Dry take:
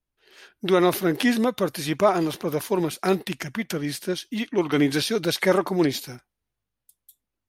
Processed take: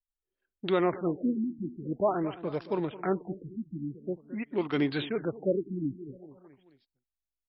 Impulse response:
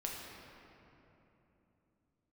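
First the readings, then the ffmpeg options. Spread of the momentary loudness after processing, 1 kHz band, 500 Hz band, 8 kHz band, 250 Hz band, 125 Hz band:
11 LU, -8.5 dB, -7.5 dB, under -40 dB, -7.0 dB, -7.0 dB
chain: -af "anlmdn=15.8,aecho=1:1:217|434|651|868:0.158|0.0777|0.0381|0.0186,afftfilt=real='re*lt(b*sr/1024,340*pow(5600/340,0.5+0.5*sin(2*PI*0.47*pts/sr)))':imag='im*lt(b*sr/1024,340*pow(5600/340,0.5+0.5*sin(2*PI*0.47*pts/sr)))':win_size=1024:overlap=0.75,volume=0.447"

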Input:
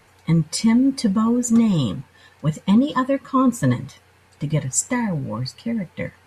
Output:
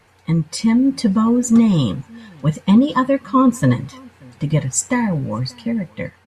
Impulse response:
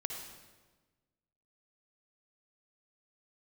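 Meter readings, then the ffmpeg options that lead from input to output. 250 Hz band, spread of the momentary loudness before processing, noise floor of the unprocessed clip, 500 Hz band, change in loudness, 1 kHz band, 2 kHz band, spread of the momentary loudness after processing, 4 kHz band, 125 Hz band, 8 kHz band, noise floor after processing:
+3.0 dB, 10 LU, -55 dBFS, +3.5 dB, +3.0 dB, +3.5 dB, +3.0 dB, 10 LU, +1.5 dB, +3.0 dB, +1.0 dB, -53 dBFS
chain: -filter_complex "[0:a]highshelf=f=7300:g=-5.5,dynaudnorm=f=340:g=5:m=1.68,asplit=2[s0][s1];[s1]adelay=583.1,volume=0.0447,highshelf=f=4000:g=-13.1[s2];[s0][s2]amix=inputs=2:normalize=0"

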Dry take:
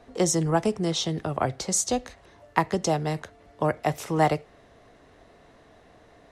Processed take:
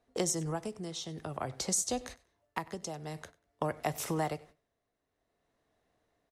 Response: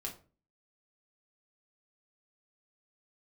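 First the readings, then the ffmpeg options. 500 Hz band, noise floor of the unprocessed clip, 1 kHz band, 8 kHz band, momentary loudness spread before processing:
-11.0 dB, -55 dBFS, -11.5 dB, -6.0 dB, 6 LU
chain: -filter_complex "[0:a]agate=range=0.0794:threshold=0.00891:ratio=16:detection=peak,highshelf=f=7000:g=10.5,acompressor=threshold=0.0282:ratio=3,tremolo=f=0.51:d=0.61,asplit=2[s0][s1];[s1]aecho=0:1:96|192:0.0841|0.0151[s2];[s0][s2]amix=inputs=2:normalize=0"

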